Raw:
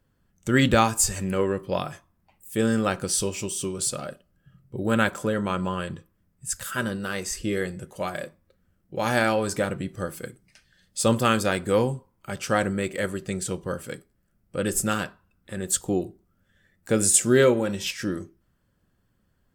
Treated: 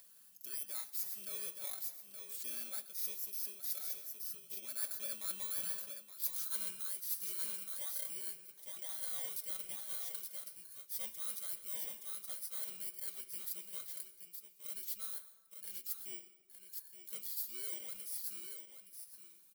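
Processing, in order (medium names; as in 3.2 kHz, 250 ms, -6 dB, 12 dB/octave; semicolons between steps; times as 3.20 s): bit-reversed sample order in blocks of 16 samples; Doppler pass-by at 5.87 s, 16 m/s, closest 2.8 m; differentiator; in parallel at -1 dB: upward compressor, threshold -48 dBFS; on the sum: comb 5.3 ms, depth 67%; delay 871 ms -10 dB; plate-style reverb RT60 1.3 s, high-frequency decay 0.55×, pre-delay 105 ms, DRR 15.5 dB; reverse; compression 6:1, threshold -50 dBFS, peak gain reduction 26.5 dB; reverse; trim +12.5 dB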